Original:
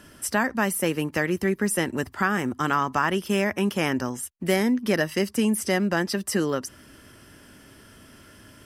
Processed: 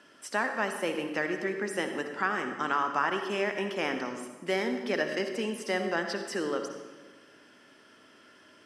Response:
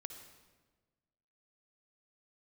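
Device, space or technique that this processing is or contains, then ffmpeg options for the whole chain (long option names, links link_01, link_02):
supermarket ceiling speaker: -filter_complex "[0:a]highpass=340,lowpass=5300[link_01];[1:a]atrim=start_sample=2205[link_02];[link_01][link_02]afir=irnorm=-1:irlink=0"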